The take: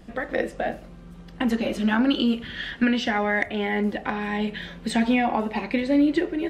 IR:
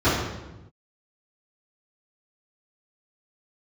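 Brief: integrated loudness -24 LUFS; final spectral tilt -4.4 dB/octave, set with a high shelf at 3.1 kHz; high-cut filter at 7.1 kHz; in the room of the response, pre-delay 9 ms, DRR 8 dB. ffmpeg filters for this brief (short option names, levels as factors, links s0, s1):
-filter_complex "[0:a]lowpass=7100,highshelf=f=3100:g=-5.5,asplit=2[s0][s1];[1:a]atrim=start_sample=2205,adelay=9[s2];[s1][s2]afir=irnorm=-1:irlink=0,volume=0.0398[s3];[s0][s3]amix=inputs=2:normalize=0,volume=0.891"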